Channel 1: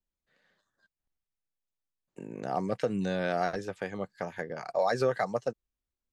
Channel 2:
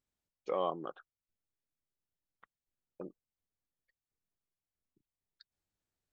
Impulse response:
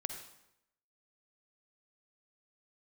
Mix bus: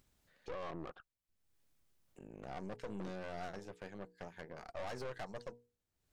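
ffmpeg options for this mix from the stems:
-filter_complex "[0:a]bandreject=f=60:t=h:w=6,bandreject=f=120:t=h:w=6,bandreject=f=180:t=h:w=6,bandreject=f=240:t=h:w=6,bandreject=f=300:t=h:w=6,bandreject=f=360:t=h:w=6,bandreject=f=420:t=h:w=6,bandreject=f=480:t=h:w=6,acontrast=55,volume=-13.5dB[a];[1:a]lowshelf=f=200:g=6,alimiter=level_in=7dB:limit=-24dB:level=0:latency=1:release=10,volume=-7dB,volume=2.5dB[b];[a][b]amix=inputs=2:normalize=0,acompressor=mode=upward:threshold=-55dB:ratio=2.5,aeval=exprs='(tanh(100*val(0)+0.8)-tanh(0.8))/100':c=same"

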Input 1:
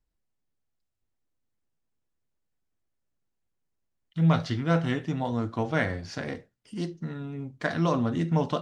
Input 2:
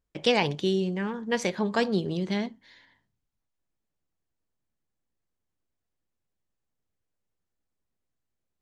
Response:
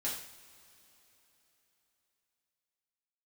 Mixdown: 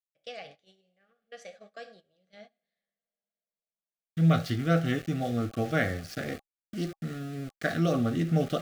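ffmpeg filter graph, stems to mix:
-filter_complex "[0:a]aeval=exprs='val(0)*gte(abs(val(0)),0.0106)':c=same,volume=-0.5dB[a];[1:a]lowshelf=f=450:t=q:w=3:g=-8,flanger=delay=6.5:depth=4.4:regen=85:speed=1.1:shape=triangular,volume=-16dB,asplit=2[b][c];[c]volume=-8dB[d];[2:a]atrim=start_sample=2205[e];[d][e]afir=irnorm=-1:irlink=0[f];[a][b][f]amix=inputs=3:normalize=0,agate=range=-18dB:threshold=-49dB:ratio=16:detection=peak,asuperstop=centerf=950:order=20:qfactor=3.2"

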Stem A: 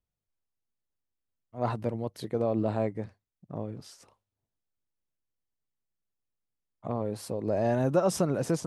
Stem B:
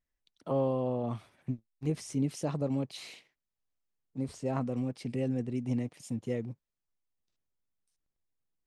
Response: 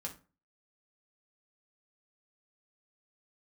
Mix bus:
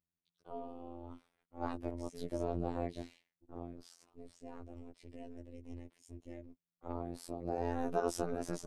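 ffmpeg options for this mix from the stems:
-filter_complex "[0:a]volume=-3dB[a];[1:a]volume=-9dB,asplit=3[b][c][d];[b]atrim=end=1.45,asetpts=PTS-STARTPTS,afade=t=out:st=1.446:d=0.004:c=hsin[e];[c]atrim=start=1.45:end=1.99,asetpts=PTS-STARTPTS,volume=0[f];[d]atrim=start=1.99,asetpts=PTS-STARTPTS,afade=t=in:d=0.004:c=hsin[g];[e][f][g]concat=n=3:v=0:a=1[h];[a][h]amix=inputs=2:normalize=0,aeval=exprs='val(0)*sin(2*PI*140*n/s)':c=same,afftfilt=real='hypot(re,im)*cos(PI*b)':imag='0':win_size=2048:overlap=0.75"

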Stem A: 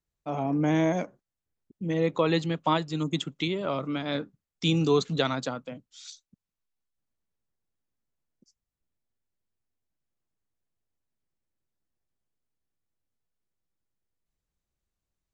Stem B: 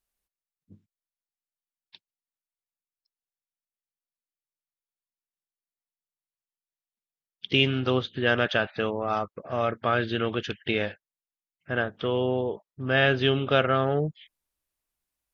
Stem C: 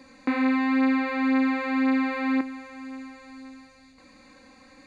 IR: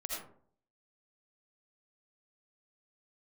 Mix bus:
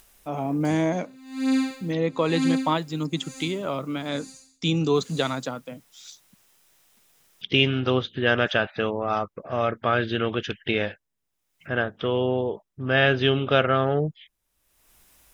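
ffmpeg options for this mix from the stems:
-filter_complex "[0:a]volume=1dB[a];[1:a]acompressor=mode=upward:threshold=-38dB:ratio=2.5,volume=2dB,asplit=3[b][c][d];[b]atrim=end=4.09,asetpts=PTS-STARTPTS,afade=t=out:st=4.086:d=0.004:c=hsin[e];[c]atrim=start=4.09:end=4.95,asetpts=PTS-STARTPTS,volume=0[f];[d]atrim=start=4.95,asetpts=PTS-STARTPTS,afade=t=in:d=0.004:c=hsin[g];[e][f][g]concat=n=3:v=0:a=1[h];[2:a]equalizer=f=250:t=o:w=0.67:g=4,equalizer=f=1k:t=o:w=0.67:g=-6,equalizer=f=4k:t=o:w=0.67:g=-9,aexciter=amount=13.2:drive=6.6:freq=3.3k,aeval=exprs='val(0)*pow(10,-29*(0.5-0.5*cos(2*PI*1.1*n/s))/20)':c=same,adelay=650,volume=-2dB[i];[a][h][i]amix=inputs=3:normalize=0,bandreject=f=4.4k:w=14"

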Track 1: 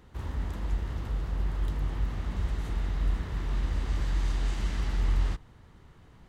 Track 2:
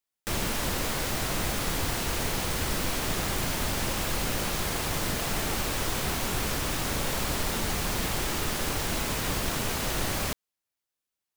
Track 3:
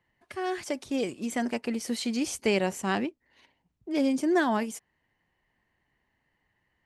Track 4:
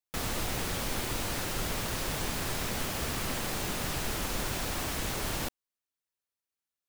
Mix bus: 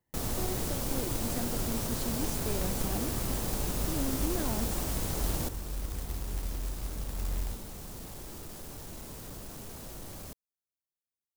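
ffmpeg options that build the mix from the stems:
-filter_complex "[0:a]adelay=2200,volume=-8dB[a];[1:a]asoftclip=type=tanh:threshold=-28.5dB,volume=-8.5dB[b];[2:a]asoftclip=type=tanh:threshold=-26dB,volume=-4.5dB[c];[3:a]volume=1.5dB[d];[a][b][c][d]amix=inputs=4:normalize=0,equalizer=f=2.2k:w=0.51:g=-11.5,acrusher=bits=3:mode=log:mix=0:aa=0.000001"

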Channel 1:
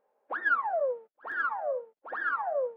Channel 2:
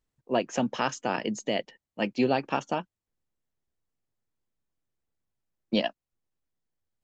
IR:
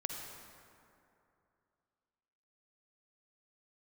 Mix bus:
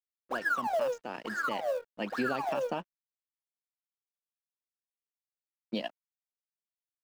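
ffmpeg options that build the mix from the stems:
-filter_complex "[0:a]highshelf=f=3.2k:g=-10,aeval=exprs='sgn(val(0))*max(abs(val(0))-0.00501,0)':c=same,acrusher=bits=7:mode=log:mix=0:aa=0.000001,volume=1.5dB[a];[1:a]highpass=120,dynaudnorm=f=270:g=13:m=11.5dB,aeval=exprs='sgn(val(0))*max(abs(val(0))-0.00668,0)':c=same,volume=-12.5dB[b];[a][b]amix=inputs=2:normalize=0,alimiter=limit=-22dB:level=0:latency=1:release=80"

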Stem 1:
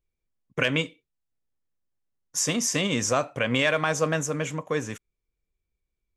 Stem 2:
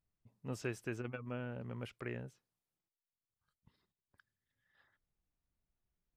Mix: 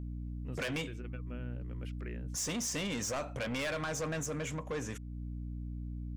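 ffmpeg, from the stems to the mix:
-filter_complex "[0:a]aeval=exprs='val(0)+0.01*(sin(2*PI*60*n/s)+sin(2*PI*2*60*n/s)/2+sin(2*PI*3*60*n/s)/3+sin(2*PI*4*60*n/s)/4+sin(2*PI*5*60*n/s)/5)':c=same,volume=1.5dB[a];[1:a]equalizer=f=840:t=o:w=1.2:g=-8,volume=-1.5dB[b];[a][b]amix=inputs=2:normalize=0,asoftclip=type=tanh:threshold=-24dB,alimiter=level_in=7.5dB:limit=-24dB:level=0:latency=1:release=313,volume=-7.5dB"

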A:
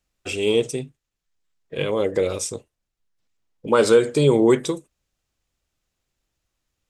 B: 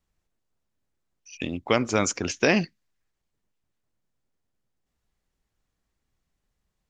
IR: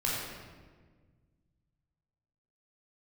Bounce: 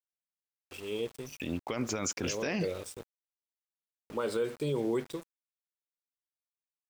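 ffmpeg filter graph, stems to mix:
-filter_complex "[0:a]equalizer=f=6.5k:t=o:w=0.43:g=-11,dynaudnorm=f=570:g=3:m=3.5dB,adelay=450,volume=-16dB[a];[1:a]volume=-2dB[b];[a][b]amix=inputs=2:normalize=0,aeval=exprs='val(0)*gte(abs(val(0)),0.00562)':c=same,alimiter=limit=-22.5dB:level=0:latency=1:release=35"

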